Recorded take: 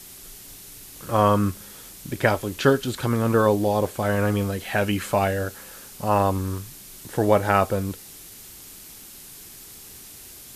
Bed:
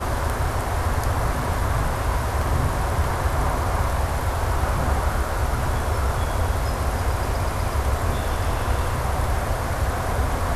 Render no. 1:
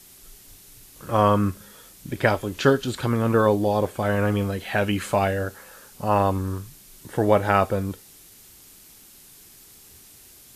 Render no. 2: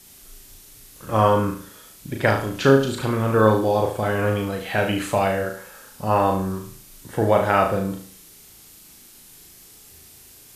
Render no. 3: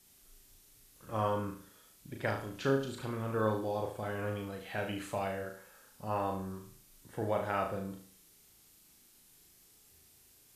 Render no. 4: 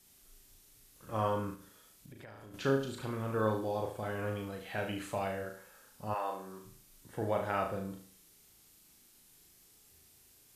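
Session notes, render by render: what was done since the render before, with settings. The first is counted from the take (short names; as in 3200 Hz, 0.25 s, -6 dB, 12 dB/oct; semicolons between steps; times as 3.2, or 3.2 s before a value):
noise print and reduce 6 dB
flutter echo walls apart 6.3 m, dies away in 0.47 s
gain -15 dB
1.55–2.54 compressor, threshold -48 dBFS; 6.13–6.64 HPF 730 Hz -> 220 Hz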